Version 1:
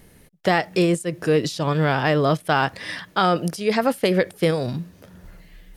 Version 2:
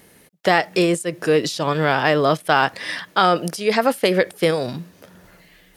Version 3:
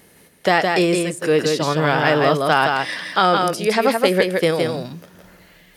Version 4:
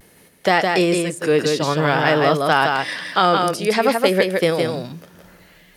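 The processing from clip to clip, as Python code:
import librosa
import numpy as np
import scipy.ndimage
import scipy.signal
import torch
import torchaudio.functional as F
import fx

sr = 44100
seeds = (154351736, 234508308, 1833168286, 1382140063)

y1 = fx.highpass(x, sr, hz=320.0, slope=6)
y1 = y1 * 10.0 ** (4.0 / 20.0)
y2 = y1 + 10.0 ** (-4.0 / 20.0) * np.pad(y1, (int(165 * sr / 1000.0), 0))[:len(y1)]
y3 = fx.vibrato(y2, sr, rate_hz=0.53, depth_cents=31.0)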